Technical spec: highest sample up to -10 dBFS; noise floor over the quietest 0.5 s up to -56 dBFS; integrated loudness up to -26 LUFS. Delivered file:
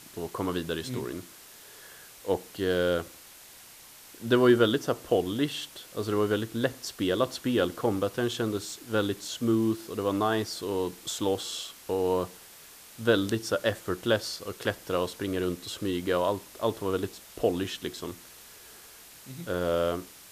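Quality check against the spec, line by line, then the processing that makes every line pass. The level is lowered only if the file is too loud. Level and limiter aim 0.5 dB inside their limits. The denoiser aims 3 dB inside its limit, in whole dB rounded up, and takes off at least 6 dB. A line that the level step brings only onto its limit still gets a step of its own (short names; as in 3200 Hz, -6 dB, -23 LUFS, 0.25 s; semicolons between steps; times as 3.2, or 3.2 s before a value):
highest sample -9.0 dBFS: fail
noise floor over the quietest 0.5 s -50 dBFS: fail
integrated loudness -29.0 LUFS: OK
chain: denoiser 9 dB, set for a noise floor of -50 dBFS; limiter -10.5 dBFS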